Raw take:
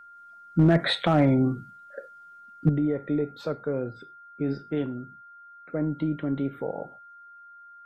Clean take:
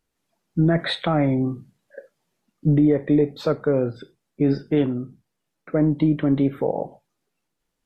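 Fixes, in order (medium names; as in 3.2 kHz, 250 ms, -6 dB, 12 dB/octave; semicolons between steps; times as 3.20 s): clip repair -12.5 dBFS; band-stop 1.4 kHz, Q 30; gain correction +8.5 dB, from 2.69 s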